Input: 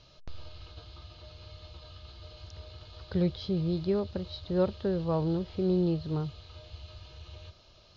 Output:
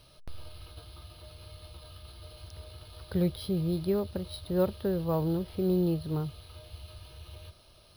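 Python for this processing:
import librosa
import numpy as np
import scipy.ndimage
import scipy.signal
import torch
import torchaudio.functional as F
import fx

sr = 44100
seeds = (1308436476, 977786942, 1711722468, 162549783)

y = np.repeat(scipy.signal.resample_poly(x, 1, 3), 3)[:len(x)]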